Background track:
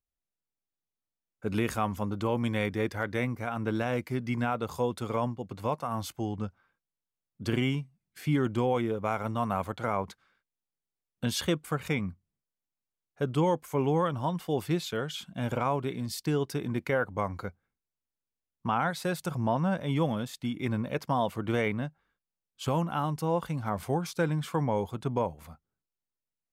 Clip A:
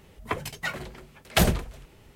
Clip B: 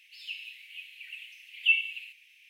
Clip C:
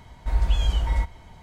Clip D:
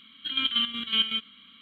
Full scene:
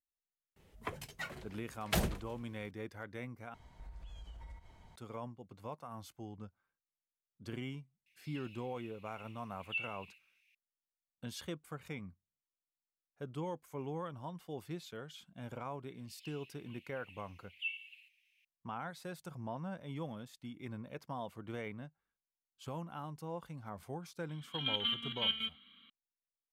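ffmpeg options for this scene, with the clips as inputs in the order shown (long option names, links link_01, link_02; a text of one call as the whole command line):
ffmpeg -i bed.wav -i cue0.wav -i cue1.wav -i cue2.wav -i cue3.wav -filter_complex "[2:a]asplit=2[link_01][link_02];[0:a]volume=-14.5dB[link_03];[3:a]acompressor=threshold=-35dB:ratio=6:attack=3.2:release=140:knee=1:detection=peak[link_04];[link_01]bandreject=frequency=3100:width=9.8[link_05];[link_03]asplit=2[link_06][link_07];[link_06]atrim=end=3.544[link_08];[link_04]atrim=end=1.42,asetpts=PTS-STARTPTS,volume=-12.5dB[link_09];[link_07]atrim=start=4.956[link_10];[1:a]atrim=end=2.15,asetpts=PTS-STARTPTS,volume=-11.5dB,afade=type=in:duration=0.004:curve=hsin,afade=type=out:start_time=2.146:duration=0.004:curve=hsin,adelay=560[link_11];[link_05]atrim=end=2.49,asetpts=PTS-STARTPTS,volume=-14.5dB,afade=type=in:duration=0.004:curve=hsin,afade=type=out:start_time=2.486:duration=0.004:curve=hsin,adelay=8060[link_12];[link_02]atrim=end=2.49,asetpts=PTS-STARTPTS,volume=-16dB,afade=type=in:duration=0.004:curve=hsin,afade=type=out:start_time=2.486:duration=0.004:curve=hsin,adelay=15960[link_13];[4:a]atrim=end=1.61,asetpts=PTS-STARTPTS,volume=-9dB,afade=type=in:duration=0.004:curve=hsin,afade=type=out:start_time=1.606:duration=0.004:curve=hsin,adelay=24290[link_14];[link_08][link_09]acrossfade=duration=0.004:curve1=hsin:curve2=hsin[link_15];[link_15][link_10]acrossfade=duration=0.004:curve1=hsin:curve2=hsin[link_16];[link_16][link_11][link_12][link_13][link_14]amix=inputs=5:normalize=0" out.wav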